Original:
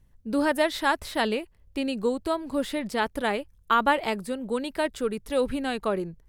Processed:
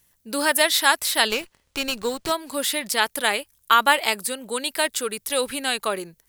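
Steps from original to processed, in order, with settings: tilt +4.5 dB/oct; 1.3–2.32 running maximum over 3 samples; gain +4 dB

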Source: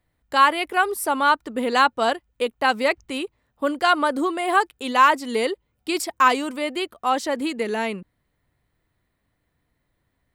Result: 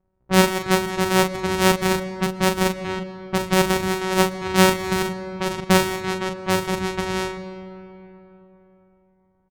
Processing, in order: sample sorter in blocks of 256 samples; low-pass opened by the level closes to 890 Hz, open at -18.5 dBFS; doubler 43 ms -7.5 dB; on a send at -13 dB: reverb RT60 3.8 s, pre-delay 80 ms; on the sum: speed mistake 44.1 kHz file played as 48 kHz; gain +1 dB

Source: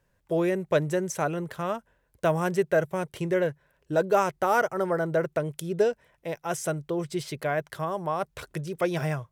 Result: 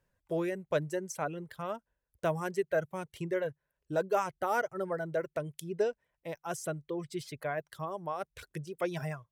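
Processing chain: reverb removal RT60 1.4 s; gain -6.5 dB

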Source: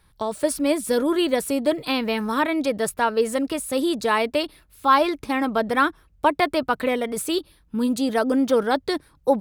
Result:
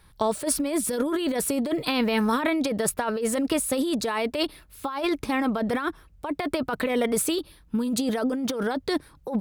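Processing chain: negative-ratio compressor -25 dBFS, ratio -1

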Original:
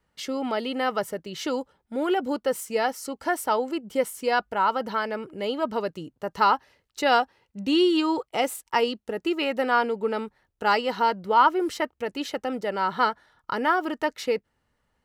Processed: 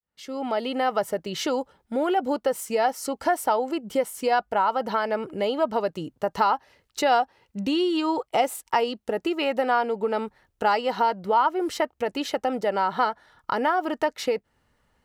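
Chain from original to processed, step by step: opening faded in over 1.01 s; compressor 2.5:1, threshold -32 dBFS, peak gain reduction 12.5 dB; dynamic EQ 720 Hz, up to +7 dB, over -46 dBFS, Q 1.8; gain +5.5 dB

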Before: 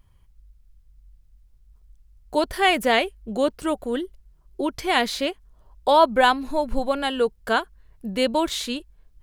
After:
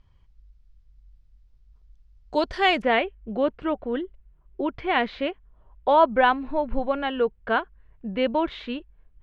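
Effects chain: LPF 5600 Hz 24 dB/oct, from 2.82 s 2800 Hz; gain -1.5 dB

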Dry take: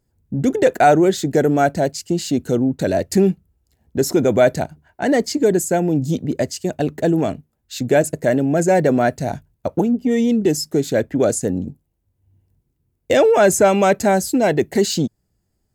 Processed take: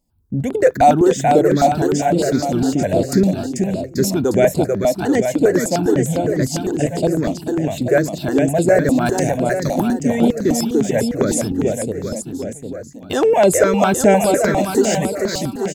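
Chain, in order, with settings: 9.06–9.99 high shelf 2300 Hz +12 dB; bouncing-ball echo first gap 0.44 s, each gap 0.9×, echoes 5; step phaser 9.9 Hz 410–6100 Hz; gain +2 dB

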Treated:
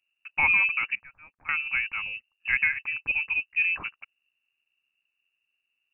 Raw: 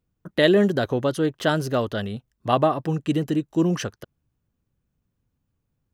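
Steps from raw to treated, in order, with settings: 0.95–1.49 differentiator; 2.52–3.07 HPF 180 Hz; inverted band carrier 2800 Hz; gain -5 dB

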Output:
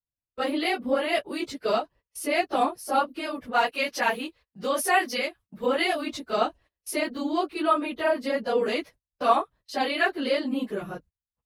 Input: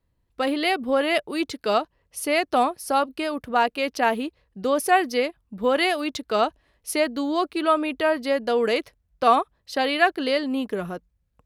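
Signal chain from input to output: phase scrambler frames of 50 ms; gate -46 dBFS, range -24 dB; 3.53–5.66 tilt shelf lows -5 dB, about 730 Hz; gain -3.5 dB

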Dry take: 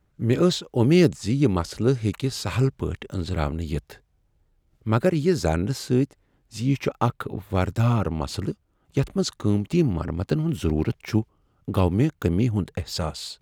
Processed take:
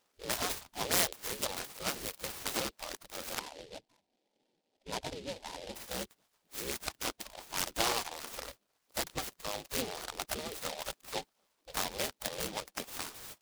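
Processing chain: 3.39–5.76 Chebyshev low-pass 950 Hz, order 6; spectral gate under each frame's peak -20 dB weak; noise-modulated delay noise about 3300 Hz, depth 0.15 ms; gain +3 dB

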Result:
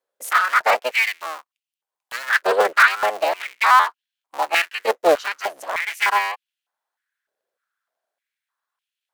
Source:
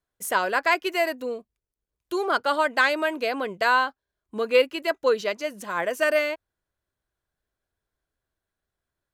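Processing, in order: cycle switcher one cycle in 3, inverted; stepped high-pass 3.3 Hz 510–2800 Hz

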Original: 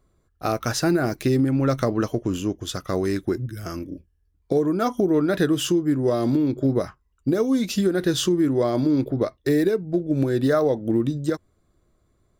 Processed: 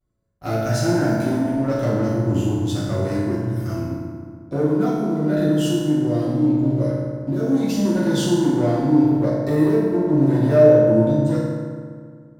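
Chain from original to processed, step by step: low shelf 190 Hz +9.5 dB; 4.68–7.45 compressor, threshold -19 dBFS, peak gain reduction 7 dB; sample leveller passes 2; vibrato 0.44 Hz 31 cents; reverb RT60 2.0 s, pre-delay 5 ms, DRR -9.5 dB; gain -16 dB

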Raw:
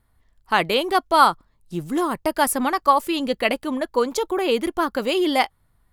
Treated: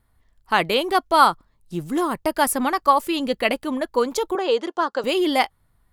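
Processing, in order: 4.35–5.04 speaker cabinet 410–7100 Hz, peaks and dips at 480 Hz +4 dB, 920 Hz +3 dB, 2300 Hz -9 dB

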